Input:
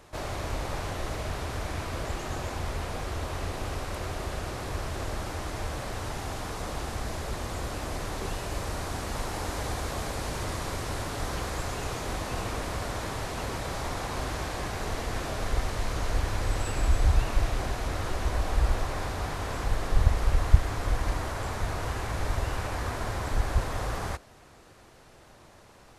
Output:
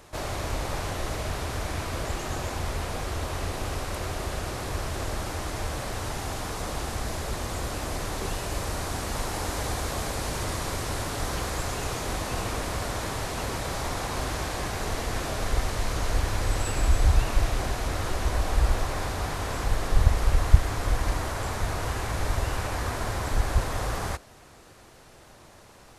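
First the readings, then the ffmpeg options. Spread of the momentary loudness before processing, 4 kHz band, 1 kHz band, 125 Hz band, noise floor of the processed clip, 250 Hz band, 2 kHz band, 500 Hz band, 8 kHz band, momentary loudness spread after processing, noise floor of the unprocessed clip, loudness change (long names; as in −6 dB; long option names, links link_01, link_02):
7 LU, +3.5 dB, +2.0 dB, +2.0 dB, −51 dBFS, +2.0 dB, +2.5 dB, +2.0 dB, +5.0 dB, 7 LU, −53 dBFS, +2.5 dB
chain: -af "highshelf=frequency=5400:gain=4.5,volume=2dB"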